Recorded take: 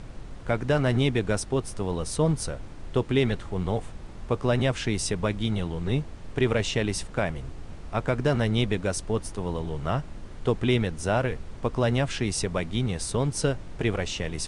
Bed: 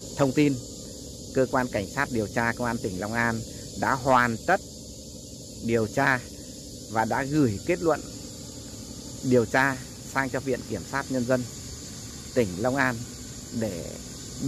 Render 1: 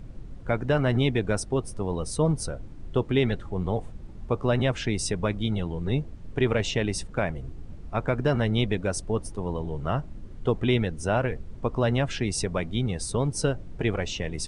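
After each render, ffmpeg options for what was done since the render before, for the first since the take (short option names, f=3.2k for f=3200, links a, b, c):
-af "afftdn=nr=11:nf=-41"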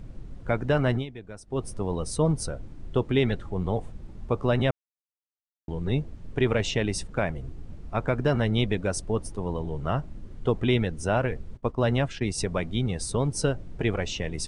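-filter_complex "[0:a]asplit=3[a][b][c];[a]afade=t=out:st=11.56:d=0.02[d];[b]agate=range=-33dB:threshold=-27dB:ratio=3:release=100:detection=peak,afade=t=in:st=11.56:d=0.02,afade=t=out:st=12.38:d=0.02[e];[c]afade=t=in:st=12.38:d=0.02[f];[d][e][f]amix=inputs=3:normalize=0,asplit=5[g][h][i][j][k];[g]atrim=end=1.06,asetpts=PTS-STARTPTS,afade=t=out:st=0.91:d=0.15:silence=0.158489[l];[h]atrim=start=1.06:end=1.47,asetpts=PTS-STARTPTS,volume=-16dB[m];[i]atrim=start=1.47:end=4.71,asetpts=PTS-STARTPTS,afade=t=in:d=0.15:silence=0.158489,afade=t=out:st=3.236:d=0.004:c=hsin[n];[j]atrim=start=4.71:end=5.68,asetpts=PTS-STARTPTS,volume=0[o];[k]atrim=start=5.68,asetpts=PTS-STARTPTS,afade=t=in:d=0.004:c=hsin[p];[l][m][n][o][p]concat=n=5:v=0:a=1"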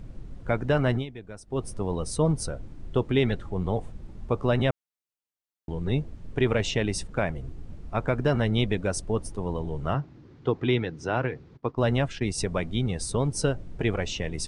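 -filter_complex "[0:a]asettb=1/sr,asplit=3[a][b][c];[a]atrim=end=9.944[d];[b]atrim=start=9.94:end=11.77,asetpts=PTS-STARTPTS,afade=t=in:d=0.004:c=qsin,afade=t=out:st=1.826:d=0.004:c=qsin,highpass=140,equalizer=f=140:t=q:w=4:g=6,equalizer=f=200:t=q:w=4:g=-9,equalizer=f=310:t=q:w=4:g=3,equalizer=f=600:t=q:w=4:g=-6,equalizer=f=3k:t=q:w=4:g=-3,lowpass=f=5.5k:w=0.5412,lowpass=f=5.5k:w=1.3066[e];[c]atrim=start=11.766[f];[d][e]acrossfade=d=0.004:c1=hsin:c2=qsin[g];[g][f]acrossfade=d=0.004:c1=qsin:c2=hsin"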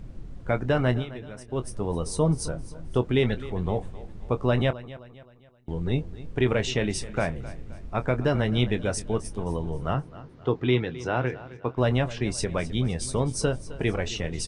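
-filter_complex "[0:a]asplit=2[a][b];[b]adelay=24,volume=-12dB[c];[a][c]amix=inputs=2:normalize=0,aecho=1:1:262|524|786|1048:0.141|0.0593|0.0249|0.0105"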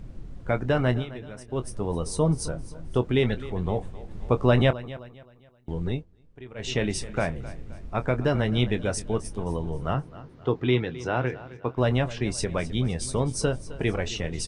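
-filter_complex "[0:a]asplit=5[a][b][c][d][e];[a]atrim=end=4.112[f];[b]atrim=start=4.108:end=5.092,asetpts=PTS-STARTPTS,volume=3.5dB[g];[c]atrim=start=5.088:end=6.05,asetpts=PTS-STARTPTS,afade=t=out:st=0.782:d=0.18:silence=0.1[h];[d]atrim=start=6.05:end=6.55,asetpts=PTS-STARTPTS,volume=-20dB[i];[e]atrim=start=6.55,asetpts=PTS-STARTPTS,afade=t=in:d=0.18:silence=0.1[j];[f][g]acrossfade=d=0.004:c1=hsin:c2=hsin[k];[h][i][j]concat=n=3:v=0:a=1[l];[k][l]acrossfade=d=0.004:c1=hsin:c2=hsin"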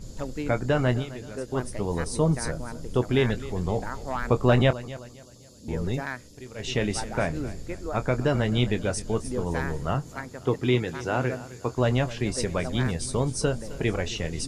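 -filter_complex "[1:a]volume=-11.5dB[a];[0:a][a]amix=inputs=2:normalize=0"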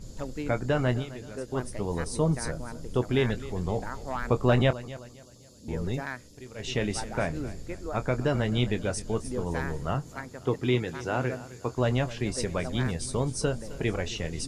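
-af "volume=-2.5dB"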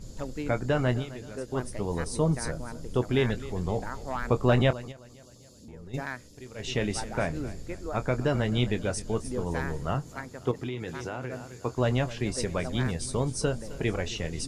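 -filter_complex "[0:a]asplit=3[a][b][c];[a]afade=t=out:st=4.91:d=0.02[d];[b]acompressor=threshold=-46dB:ratio=3:attack=3.2:release=140:knee=1:detection=peak,afade=t=in:st=4.91:d=0.02,afade=t=out:st=5.93:d=0.02[e];[c]afade=t=in:st=5.93:d=0.02[f];[d][e][f]amix=inputs=3:normalize=0,asettb=1/sr,asplit=3[g][h][i];[g]atrim=end=10.514[j];[h]atrim=start=10.51:end=11.53,asetpts=PTS-STARTPTS,afade=t=in:d=0.004:c=qsin,afade=t=out:st=1.016:d=0.004:c=qsin,acompressor=threshold=-29dB:ratio=12:attack=3.2:release=140:knee=1:detection=peak[k];[i]atrim=start=11.526[l];[j][k]acrossfade=d=0.004:c1=hsin:c2=qsin[m];[m][l]acrossfade=d=0.004:c1=qsin:c2=hsin"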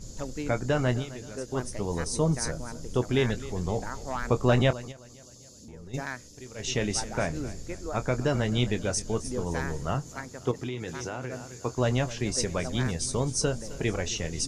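-af "equalizer=f=6.2k:t=o:w=0.63:g=9.5"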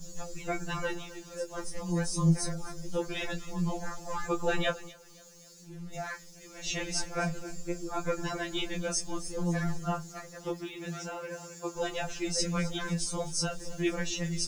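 -af "acrusher=bits=8:mix=0:aa=0.5,afftfilt=real='re*2.83*eq(mod(b,8),0)':imag='im*2.83*eq(mod(b,8),0)':win_size=2048:overlap=0.75"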